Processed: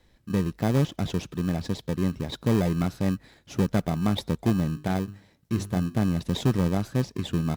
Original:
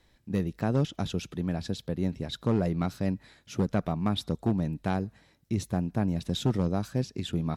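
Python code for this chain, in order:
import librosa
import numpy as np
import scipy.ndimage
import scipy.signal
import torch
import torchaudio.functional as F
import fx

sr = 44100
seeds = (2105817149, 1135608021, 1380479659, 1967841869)

p1 = fx.hum_notches(x, sr, base_hz=50, count=8, at=(4.72, 5.94), fade=0.02)
p2 = fx.sample_hold(p1, sr, seeds[0], rate_hz=1400.0, jitter_pct=0)
y = p1 + F.gain(torch.from_numpy(p2), -5.0).numpy()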